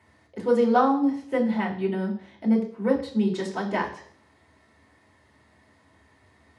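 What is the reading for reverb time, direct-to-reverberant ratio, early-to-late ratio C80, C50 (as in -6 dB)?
0.55 s, -1.5 dB, 13.0 dB, 9.5 dB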